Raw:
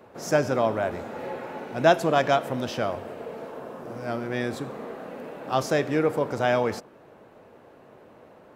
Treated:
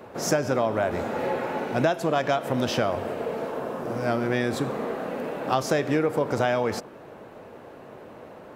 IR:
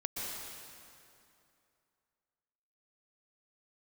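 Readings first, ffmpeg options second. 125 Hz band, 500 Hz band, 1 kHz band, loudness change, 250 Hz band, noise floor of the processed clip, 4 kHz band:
+2.0 dB, 0.0 dB, −0.5 dB, −0.5 dB, +2.0 dB, −45 dBFS, +1.0 dB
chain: -af "acompressor=threshold=-26dB:ratio=12,volume=7dB"

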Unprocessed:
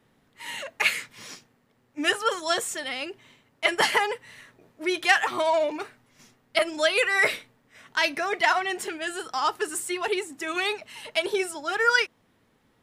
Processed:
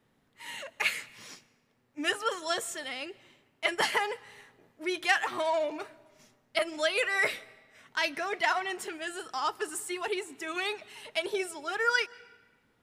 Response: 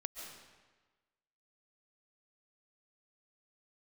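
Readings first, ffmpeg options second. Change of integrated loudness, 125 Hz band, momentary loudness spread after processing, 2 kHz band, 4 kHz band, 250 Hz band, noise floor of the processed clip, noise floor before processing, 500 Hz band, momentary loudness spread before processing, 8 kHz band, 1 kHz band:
−5.5 dB, can't be measured, 14 LU, −5.5 dB, −5.5 dB, −5.5 dB, −71 dBFS, −66 dBFS, −5.5 dB, 14 LU, −5.5 dB, −5.5 dB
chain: -filter_complex "[0:a]asplit=2[link_01][link_02];[1:a]atrim=start_sample=2205[link_03];[link_02][link_03]afir=irnorm=-1:irlink=0,volume=-16.5dB[link_04];[link_01][link_04]amix=inputs=2:normalize=0,volume=-6.5dB"

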